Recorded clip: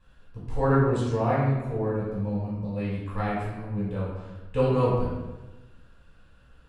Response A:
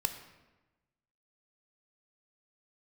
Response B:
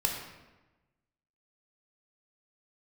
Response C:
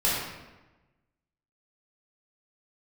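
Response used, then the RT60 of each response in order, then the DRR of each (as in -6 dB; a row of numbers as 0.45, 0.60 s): C; 1.1, 1.1, 1.1 s; 7.0, 0.5, -8.5 dB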